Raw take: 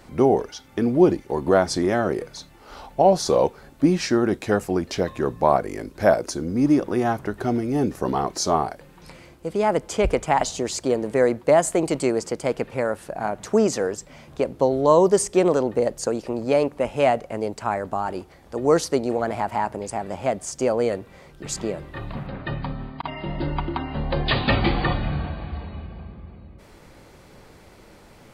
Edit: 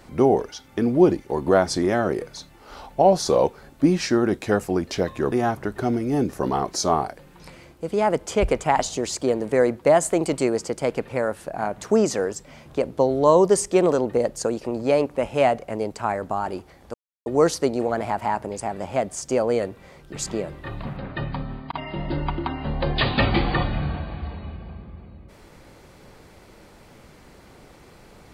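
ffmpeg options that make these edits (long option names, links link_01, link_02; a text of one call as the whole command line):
ffmpeg -i in.wav -filter_complex "[0:a]asplit=3[link_01][link_02][link_03];[link_01]atrim=end=5.322[link_04];[link_02]atrim=start=6.938:end=18.56,asetpts=PTS-STARTPTS,afade=type=out:start_time=11.618:duration=0.004:curve=hsin,apad=pad_dur=0.32[link_05];[link_03]atrim=start=18.56,asetpts=PTS-STARTPTS,afade=type=in:duration=0.004:curve=hsin[link_06];[link_05][link_06]concat=n=2:v=0:a=1[link_07];[link_04][link_07]acrossfade=duration=0.004:curve1=hsin:curve2=hsin" out.wav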